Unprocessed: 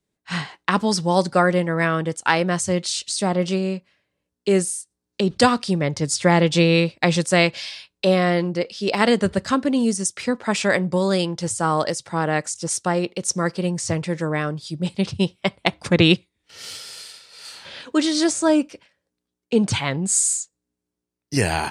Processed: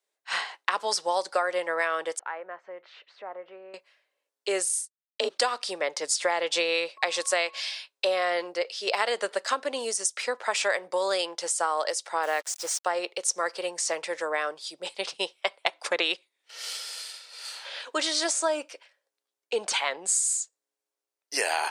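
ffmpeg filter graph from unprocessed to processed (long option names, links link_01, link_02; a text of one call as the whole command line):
ffmpeg -i in.wav -filter_complex "[0:a]asettb=1/sr,asplit=3[link_01][link_02][link_03];[link_01]atrim=end=2.194[link_04];[link_02]atrim=start=2.19:end=3.74,asetpts=PTS-STARTPTS,afade=type=in:duration=0.004:curve=qsin,afade=type=out:start_time=1.546:duration=0.004:curve=qsin,lowpass=frequency=1900:width=0.5412,lowpass=frequency=1900:width=1.3066,acompressor=threshold=-42dB:ratio=2:attack=3.2:release=140:knee=1:detection=peak[link_05];[link_03]atrim=start=3.736[link_06];[link_04][link_05]acrossfade=duration=0.004:curve1=hsin:curve2=qsin[link_07];[link_07][link_06]acrossfade=duration=0.004:curve1=qsin:curve2=hsin,asettb=1/sr,asplit=3[link_08][link_09][link_10];[link_08]atrim=end=4.694[link_11];[link_09]atrim=start=4.69:end=5.29,asetpts=PTS-STARTPTS,afade=type=in:duration=0.004:curve=qsin,afade=type=out:start_time=0.596:duration=0.004:curve=qsin,agate=range=-33dB:threshold=-33dB:ratio=3:release=100:detection=peak,afreqshift=41,asplit=2[link_12][link_13];[link_13]adelay=38,volume=-4dB[link_14];[link_12][link_14]amix=inputs=2:normalize=0,atrim=end_sample=26460[link_15];[link_10]atrim=start=5.286[link_16];[link_11][link_15]acrossfade=duration=0.004:curve1=hsin:curve2=qsin[link_17];[link_17][link_16]acrossfade=duration=0.004:curve1=qsin:curve2=hsin,asettb=1/sr,asplit=3[link_18][link_19][link_20];[link_18]atrim=end=6.974[link_21];[link_19]atrim=start=6.97:end=7.6,asetpts=PTS-STARTPTS,afade=type=in:duration=0.004:curve=qsin,afade=type=out:start_time=0.626:duration=0.004:curve=qsin,highpass=180,aeval=exprs='val(0)+0.00562*sin(2*PI*1100*n/s)':channel_layout=same[link_22];[link_20]atrim=start=7.596[link_23];[link_21][link_22]acrossfade=duration=0.004:curve1=hsin:curve2=qsin[link_24];[link_24][link_23]acrossfade=duration=0.004:curve1=qsin:curve2=hsin,asettb=1/sr,asplit=3[link_25][link_26][link_27];[link_25]atrim=end=12.234[link_28];[link_26]atrim=start=12.23:end=12.85,asetpts=PTS-STARTPTS,afade=type=in:duration=0.004:curve=qsin,afade=type=out:start_time=0.616:duration=0.004:curve=qsin,acrossover=split=7100[link_29][link_30];[link_30]acompressor=threshold=-37dB:ratio=4:attack=1:release=60[link_31];[link_29][link_31]amix=inputs=2:normalize=0,acrusher=bits=5:mix=0:aa=0.5[link_32];[link_27]atrim=start=12.846[link_33];[link_28][link_32]acrossfade=duration=0.004:curve1=hsin:curve2=qsin[link_34];[link_34][link_33]acrossfade=duration=0.004:curve1=qsin:curve2=hsin,highpass=frequency=510:width=0.5412,highpass=frequency=510:width=1.3066,acompressor=threshold=-22dB:ratio=6" out.wav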